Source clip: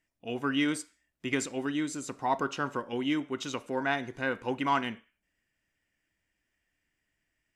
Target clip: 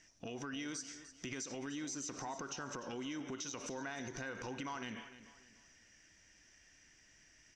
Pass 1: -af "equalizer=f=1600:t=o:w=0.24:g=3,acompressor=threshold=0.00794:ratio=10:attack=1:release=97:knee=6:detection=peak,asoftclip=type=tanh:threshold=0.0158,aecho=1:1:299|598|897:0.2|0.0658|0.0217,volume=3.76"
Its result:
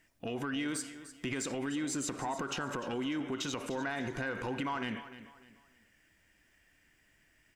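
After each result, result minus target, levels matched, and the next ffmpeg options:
compression: peak gain reduction -8.5 dB; 8 kHz band -4.5 dB
-af "equalizer=f=1600:t=o:w=0.24:g=3,acompressor=threshold=0.00282:ratio=10:attack=1:release=97:knee=6:detection=peak,asoftclip=type=tanh:threshold=0.0158,aecho=1:1:299|598|897:0.2|0.0658|0.0217,volume=3.76"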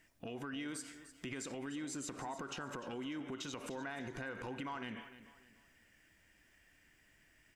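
8 kHz band -4.5 dB
-af "lowpass=f=5900:t=q:w=9.6,equalizer=f=1600:t=o:w=0.24:g=3,acompressor=threshold=0.00282:ratio=10:attack=1:release=97:knee=6:detection=peak,asoftclip=type=tanh:threshold=0.0158,aecho=1:1:299|598|897:0.2|0.0658|0.0217,volume=3.76"

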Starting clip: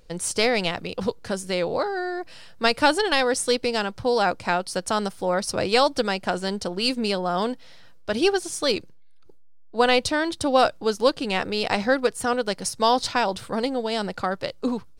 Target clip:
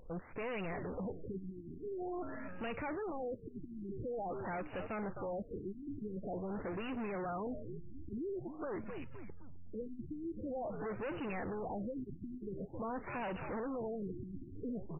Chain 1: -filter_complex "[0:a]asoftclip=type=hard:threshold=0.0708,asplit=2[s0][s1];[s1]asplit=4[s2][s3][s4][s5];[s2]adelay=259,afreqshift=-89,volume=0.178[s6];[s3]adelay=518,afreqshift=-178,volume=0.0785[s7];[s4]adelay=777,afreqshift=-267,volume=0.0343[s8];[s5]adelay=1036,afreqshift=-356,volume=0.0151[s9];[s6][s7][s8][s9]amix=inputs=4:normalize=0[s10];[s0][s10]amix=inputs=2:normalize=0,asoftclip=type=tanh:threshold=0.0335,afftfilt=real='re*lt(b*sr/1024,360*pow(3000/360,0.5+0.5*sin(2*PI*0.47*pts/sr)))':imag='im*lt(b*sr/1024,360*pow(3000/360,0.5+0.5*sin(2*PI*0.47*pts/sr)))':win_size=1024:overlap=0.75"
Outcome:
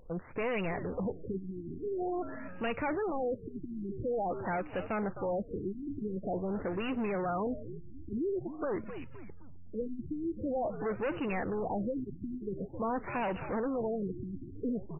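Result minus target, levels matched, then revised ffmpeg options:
saturation: distortion -6 dB
-filter_complex "[0:a]asoftclip=type=hard:threshold=0.0708,asplit=2[s0][s1];[s1]asplit=4[s2][s3][s4][s5];[s2]adelay=259,afreqshift=-89,volume=0.178[s6];[s3]adelay=518,afreqshift=-178,volume=0.0785[s7];[s4]adelay=777,afreqshift=-267,volume=0.0343[s8];[s5]adelay=1036,afreqshift=-356,volume=0.0151[s9];[s6][s7][s8][s9]amix=inputs=4:normalize=0[s10];[s0][s10]amix=inputs=2:normalize=0,asoftclip=type=tanh:threshold=0.0133,afftfilt=real='re*lt(b*sr/1024,360*pow(3000/360,0.5+0.5*sin(2*PI*0.47*pts/sr)))':imag='im*lt(b*sr/1024,360*pow(3000/360,0.5+0.5*sin(2*PI*0.47*pts/sr)))':win_size=1024:overlap=0.75"

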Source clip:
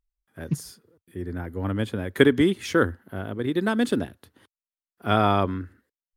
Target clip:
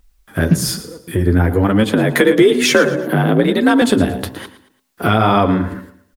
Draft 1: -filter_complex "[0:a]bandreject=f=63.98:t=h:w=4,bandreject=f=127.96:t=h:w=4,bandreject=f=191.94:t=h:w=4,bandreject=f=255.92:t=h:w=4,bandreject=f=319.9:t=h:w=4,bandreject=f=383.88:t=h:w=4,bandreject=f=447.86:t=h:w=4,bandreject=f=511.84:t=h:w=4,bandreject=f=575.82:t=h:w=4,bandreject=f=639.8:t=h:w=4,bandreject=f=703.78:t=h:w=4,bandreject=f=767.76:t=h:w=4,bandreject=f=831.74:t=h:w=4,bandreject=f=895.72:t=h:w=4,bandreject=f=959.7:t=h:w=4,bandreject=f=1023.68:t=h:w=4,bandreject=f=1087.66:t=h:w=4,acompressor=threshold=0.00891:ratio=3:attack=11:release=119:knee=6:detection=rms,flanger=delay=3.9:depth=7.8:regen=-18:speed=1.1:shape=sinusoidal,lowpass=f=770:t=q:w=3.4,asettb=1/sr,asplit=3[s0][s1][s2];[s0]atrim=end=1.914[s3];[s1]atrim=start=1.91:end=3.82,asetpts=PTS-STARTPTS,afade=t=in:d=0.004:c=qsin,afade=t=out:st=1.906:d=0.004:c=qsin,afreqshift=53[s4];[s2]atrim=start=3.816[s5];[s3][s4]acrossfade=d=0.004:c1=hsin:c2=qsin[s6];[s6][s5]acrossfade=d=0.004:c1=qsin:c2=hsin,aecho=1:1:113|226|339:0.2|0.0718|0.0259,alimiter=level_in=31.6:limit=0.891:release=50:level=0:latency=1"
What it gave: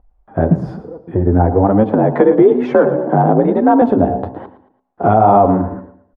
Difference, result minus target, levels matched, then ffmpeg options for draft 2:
1 kHz band +4.5 dB
-filter_complex "[0:a]bandreject=f=63.98:t=h:w=4,bandreject=f=127.96:t=h:w=4,bandreject=f=191.94:t=h:w=4,bandreject=f=255.92:t=h:w=4,bandreject=f=319.9:t=h:w=4,bandreject=f=383.88:t=h:w=4,bandreject=f=447.86:t=h:w=4,bandreject=f=511.84:t=h:w=4,bandreject=f=575.82:t=h:w=4,bandreject=f=639.8:t=h:w=4,bandreject=f=703.78:t=h:w=4,bandreject=f=767.76:t=h:w=4,bandreject=f=831.74:t=h:w=4,bandreject=f=895.72:t=h:w=4,bandreject=f=959.7:t=h:w=4,bandreject=f=1023.68:t=h:w=4,bandreject=f=1087.66:t=h:w=4,acompressor=threshold=0.00891:ratio=3:attack=11:release=119:knee=6:detection=rms,flanger=delay=3.9:depth=7.8:regen=-18:speed=1.1:shape=sinusoidal,asettb=1/sr,asplit=3[s0][s1][s2];[s0]atrim=end=1.914[s3];[s1]atrim=start=1.91:end=3.82,asetpts=PTS-STARTPTS,afade=t=in:d=0.004:c=qsin,afade=t=out:st=1.906:d=0.004:c=qsin,afreqshift=53[s4];[s2]atrim=start=3.816[s5];[s3][s4]acrossfade=d=0.004:c1=hsin:c2=qsin[s6];[s6][s5]acrossfade=d=0.004:c1=qsin:c2=hsin,aecho=1:1:113|226|339:0.2|0.0718|0.0259,alimiter=level_in=31.6:limit=0.891:release=50:level=0:latency=1"

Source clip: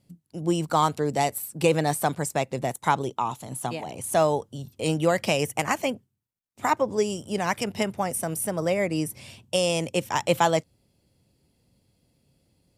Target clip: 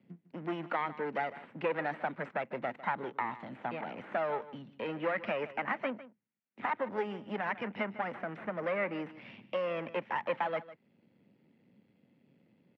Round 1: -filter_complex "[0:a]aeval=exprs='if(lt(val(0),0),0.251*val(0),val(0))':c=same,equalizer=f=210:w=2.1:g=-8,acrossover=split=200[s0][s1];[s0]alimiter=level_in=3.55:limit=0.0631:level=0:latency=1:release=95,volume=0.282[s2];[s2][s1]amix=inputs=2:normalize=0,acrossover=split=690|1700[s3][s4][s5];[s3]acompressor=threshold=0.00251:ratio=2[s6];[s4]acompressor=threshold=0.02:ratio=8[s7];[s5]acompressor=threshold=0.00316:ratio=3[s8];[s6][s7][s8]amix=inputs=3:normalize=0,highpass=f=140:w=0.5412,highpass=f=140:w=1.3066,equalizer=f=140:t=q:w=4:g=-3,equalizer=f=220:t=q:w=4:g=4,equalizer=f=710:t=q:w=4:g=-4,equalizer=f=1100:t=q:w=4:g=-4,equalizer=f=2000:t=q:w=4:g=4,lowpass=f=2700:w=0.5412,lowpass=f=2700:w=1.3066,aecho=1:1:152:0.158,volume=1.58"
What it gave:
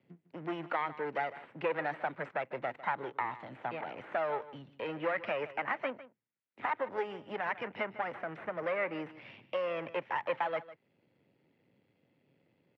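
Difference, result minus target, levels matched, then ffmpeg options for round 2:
250 Hz band -3.5 dB
-filter_complex "[0:a]aeval=exprs='if(lt(val(0),0),0.251*val(0),val(0))':c=same,equalizer=f=210:w=2.1:g=3.5,acrossover=split=200[s0][s1];[s0]alimiter=level_in=3.55:limit=0.0631:level=0:latency=1:release=95,volume=0.282[s2];[s2][s1]amix=inputs=2:normalize=0,acrossover=split=690|1700[s3][s4][s5];[s3]acompressor=threshold=0.00251:ratio=2[s6];[s4]acompressor=threshold=0.02:ratio=8[s7];[s5]acompressor=threshold=0.00316:ratio=3[s8];[s6][s7][s8]amix=inputs=3:normalize=0,highpass=f=140:w=0.5412,highpass=f=140:w=1.3066,equalizer=f=140:t=q:w=4:g=-3,equalizer=f=220:t=q:w=4:g=4,equalizer=f=710:t=q:w=4:g=-4,equalizer=f=1100:t=q:w=4:g=-4,equalizer=f=2000:t=q:w=4:g=4,lowpass=f=2700:w=0.5412,lowpass=f=2700:w=1.3066,aecho=1:1:152:0.158,volume=1.58"

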